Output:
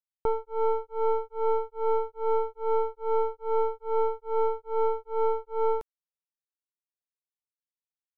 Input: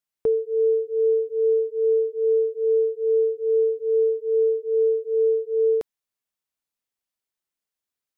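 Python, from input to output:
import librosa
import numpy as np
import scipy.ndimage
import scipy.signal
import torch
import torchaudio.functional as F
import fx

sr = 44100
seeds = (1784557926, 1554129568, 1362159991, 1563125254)

y = np.where(x < 0.0, 10.0 ** (-12.0 / 20.0) * x, x)
y = fx.power_curve(y, sr, exponent=2.0)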